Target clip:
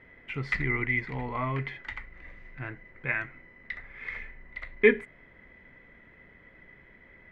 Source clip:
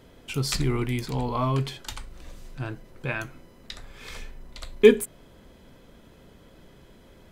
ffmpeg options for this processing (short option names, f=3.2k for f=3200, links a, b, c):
-af "lowpass=f=2k:t=q:w=16,volume=-7dB"